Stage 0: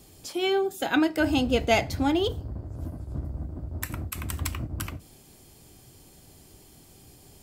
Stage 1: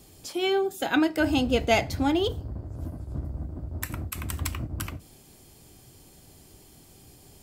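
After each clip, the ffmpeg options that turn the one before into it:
-af anull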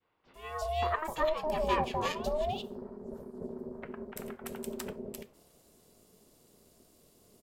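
-filter_complex "[0:a]acrossover=split=560|2300[a][b][c];[a]adelay=260[d];[c]adelay=340[e];[d][b][e]amix=inputs=3:normalize=0,aeval=exprs='val(0)*sin(2*PI*310*n/s)':c=same,adynamicequalizer=threshold=0.00631:dfrequency=920:dqfactor=0.73:tfrequency=920:tqfactor=0.73:attack=5:release=100:ratio=0.375:range=4:mode=boostabove:tftype=bell,volume=-7dB"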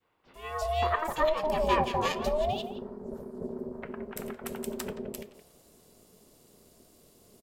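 -filter_complex "[0:a]asplit=2[a][b];[b]adelay=170,highpass=300,lowpass=3.4k,asoftclip=type=hard:threshold=-25dB,volume=-12dB[c];[a][c]amix=inputs=2:normalize=0,volume=3.5dB"

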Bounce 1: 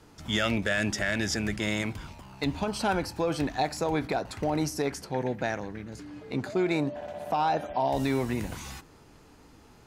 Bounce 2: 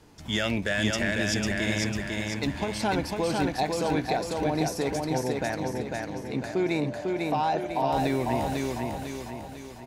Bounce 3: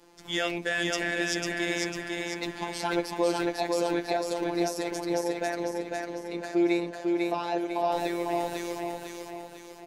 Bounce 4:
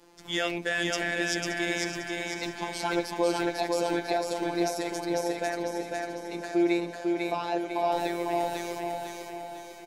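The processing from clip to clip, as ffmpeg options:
-filter_complex "[0:a]equalizer=f=1.3k:w=6.6:g=-7,asplit=2[a][b];[b]aecho=0:1:499|998|1497|1996|2495|2994:0.708|0.34|0.163|0.0783|0.0376|0.018[c];[a][c]amix=inputs=2:normalize=0"
-af "afftfilt=real='hypot(re,im)*cos(PI*b)':imag='0':win_size=1024:overlap=0.75,lowshelf=f=240:t=q:w=1.5:g=-8,volume=2dB"
-af "aecho=1:1:576|1152|1728|2304|2880:0.251|0.128|0.0653|0.0333|0.017"

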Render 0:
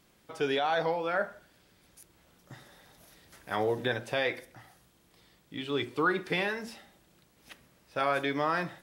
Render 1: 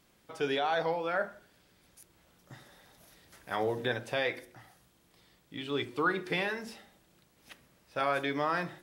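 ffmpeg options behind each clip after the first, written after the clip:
-af "bandreject=f=51.72:t=h:w=4,bandreject=f=103.44:t=h:w=4,bandreject=f=155.16:t=h:w=4,bandreject=f=206.88:t=h:w=4,bandreject=f=258.6:t=h:w=4,bandreject=f=310.32:t=h:w=4,bandreject=f=362.04:t=h:w=4,bandreject=f=413.76:t=h:w=4,bandreject=f=465.48:t=h:w=4,volume=-1.5dB"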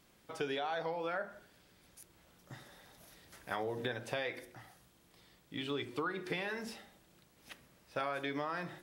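-af "acompressor=threshold=-33dB:ratio=12"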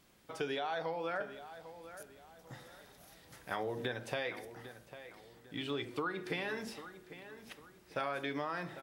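-filter_complex "[0:a]asplit=2[a][b];[b]adelay=799,lowpass=f=3.5k:p=1,volume=-13dB,asplit=2[c][d];[d]adelay=799,lowpass=f=3.5k:p=1,volume=0.38,asplit=2[e][f];[f]adelay=799,lowpass=f=3.5k:p=1,volume=0.38,asplit=2[g][h];[h]adelay=799,lowpass=f=3.5k:p=1,volume=0.38[i];[a][c][e][g][i]amix=inputs=5:normalize=0"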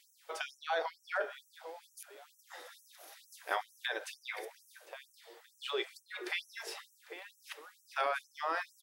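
-af "afftfilt=real='re*gte(b*sr/1024,300*pow(5700/300,0.5+0.5*sin(2*PI*2.2*pts/sr)))':imag='im*gte(b*sr/1024,300*pow(5700/300,0.5+0.5*sin(2*PI*2.2*pts/sr)))':win_size=1024:overlap=0.75,volume=5dB"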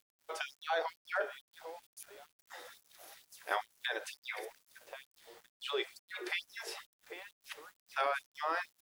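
-af "aeval=exprs='val(0)*gte(abs(val(0)),0.00133)':c=same"

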